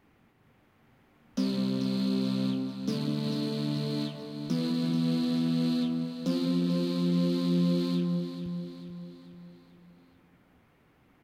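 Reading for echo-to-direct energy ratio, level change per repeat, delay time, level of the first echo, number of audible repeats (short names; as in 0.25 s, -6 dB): -9.0 dB, -6.0 dB, 0.438 s, -10.0 dB, 5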